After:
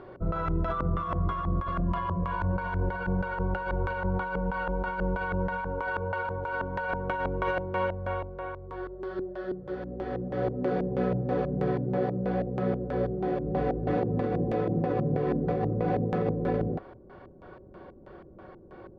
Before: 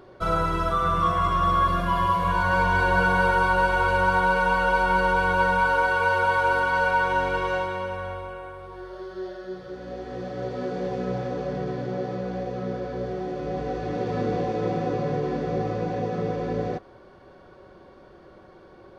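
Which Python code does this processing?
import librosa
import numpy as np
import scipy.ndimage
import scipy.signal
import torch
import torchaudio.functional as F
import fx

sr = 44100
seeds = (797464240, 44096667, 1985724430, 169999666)

y = fx.filter_lfo_lowpass(x, sr, shape='square', hz=3.1, low_hz=310.0, high_hz=2500.0, q=0.75)
y = fx.over_compress(y, sr, threshold_db=-28.0, ratio=-1.0)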